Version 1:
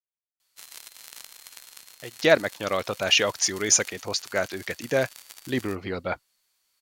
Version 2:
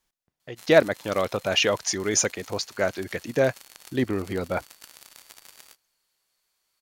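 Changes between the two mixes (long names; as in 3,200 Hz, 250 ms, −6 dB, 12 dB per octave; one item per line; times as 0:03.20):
speech: entry −1.55 s
master: add tilt shelving filter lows +3.5 dB, about 1,200 Hz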